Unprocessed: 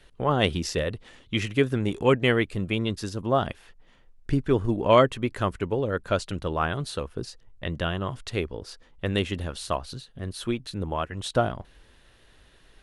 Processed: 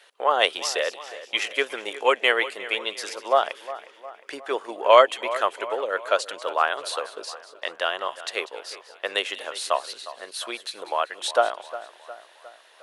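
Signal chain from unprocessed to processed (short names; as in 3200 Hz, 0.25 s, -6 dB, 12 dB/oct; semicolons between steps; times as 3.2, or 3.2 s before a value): HPF 540 Hz 24 dB/oct; split-band echo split 2400 Hz, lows 0.358 s, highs 0.193 s, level -15 dB; gain +5.5 dB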